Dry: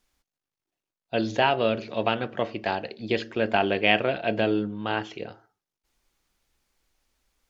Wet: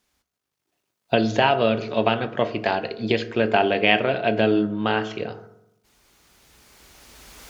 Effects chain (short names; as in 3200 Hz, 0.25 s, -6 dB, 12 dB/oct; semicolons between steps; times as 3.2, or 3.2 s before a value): recorder AGC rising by 11 dB/s; HPF 55 Hz; reverb RT60 0.85 s, pre-delay 4 ms, DRR 10.5 dB; gain +2.5 dB